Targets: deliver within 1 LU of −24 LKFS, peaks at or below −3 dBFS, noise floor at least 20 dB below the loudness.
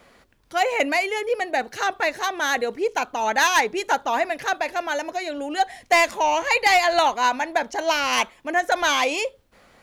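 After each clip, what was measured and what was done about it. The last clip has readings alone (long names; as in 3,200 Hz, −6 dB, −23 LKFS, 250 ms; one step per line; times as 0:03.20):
share of clipped samples 0.2%; peaks flattened at −10.5 dBFS; integrated loudness −22.0 LKFS; sample peak −10.5 dBFS; target loudness −24.0 LKFS
→ clipped peaks rebuilt −10.5 dBFS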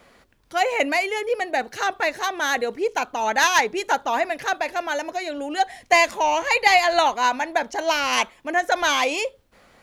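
share of clipped samples 0.0%; integrated loudness −21.5 LKFS; sample peak −2.5 dBFS; target loudness −24.0 LKFS
→ level −2.5 dB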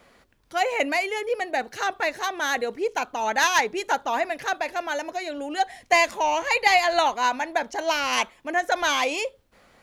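integrated loudness −24.0 LKFS; sample peak −5.0 dBFS; background noise floor −61 dBFS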